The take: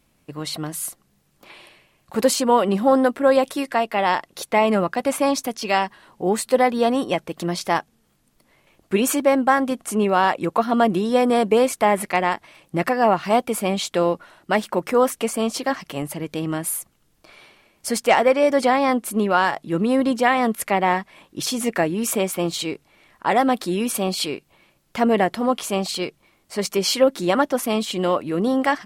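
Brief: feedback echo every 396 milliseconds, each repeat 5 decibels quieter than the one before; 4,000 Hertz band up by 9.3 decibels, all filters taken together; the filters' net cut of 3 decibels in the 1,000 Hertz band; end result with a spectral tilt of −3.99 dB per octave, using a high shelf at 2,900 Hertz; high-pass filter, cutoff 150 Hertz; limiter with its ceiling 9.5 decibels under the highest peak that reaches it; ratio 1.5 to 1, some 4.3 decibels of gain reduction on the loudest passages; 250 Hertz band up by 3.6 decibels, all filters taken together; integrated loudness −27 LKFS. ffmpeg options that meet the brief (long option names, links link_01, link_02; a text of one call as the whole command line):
ffmpeg -i in.wav -af "highpass=150,equalizer=frequency=250:width_type=o:gain=5,equalizer=frequency=1000:width_type=o:gain=-5.5,highshelf=frequency=2900:gain=5,equalizer=frequency=4000:width_type=o:gain=8,acompressor=threshold=-22dB:ratio=1.5,alimiter=limit=-14.5dB:level=0:latency=1,aecho=1:1:396|792|1188|1584|1980|2376|2772:0.562|0.315|0.176|0.0988|0.0553|0.031|0.0173,volume=-3.5dB" out.wav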